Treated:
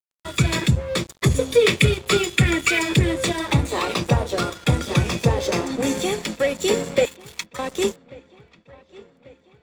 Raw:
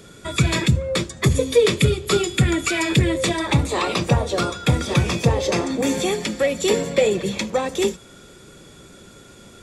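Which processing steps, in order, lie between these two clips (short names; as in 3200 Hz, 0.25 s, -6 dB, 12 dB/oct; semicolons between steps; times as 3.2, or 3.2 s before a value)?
1.61–2.79 bell 2300 Hz +7 dB 0.98 oct; 7.05–7.59 Chebyshev high-pass 890 Hz, order 10; crossover distortion -34 dBFS; dark delay 1.141 s, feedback 55%, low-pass 3400 Hz, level -23.5 dB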